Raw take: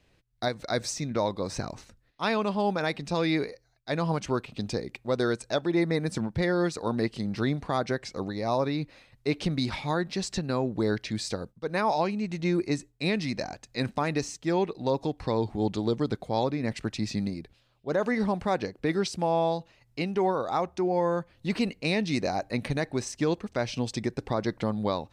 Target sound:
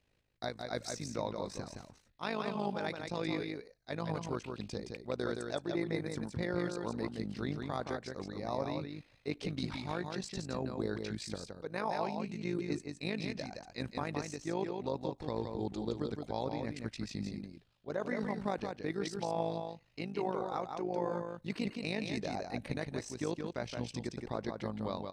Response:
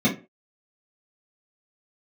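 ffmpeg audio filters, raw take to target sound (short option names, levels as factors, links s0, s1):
-af "tremolo=f=52:d=0.75,aecho=1:1:169:0.562,volume=0.447"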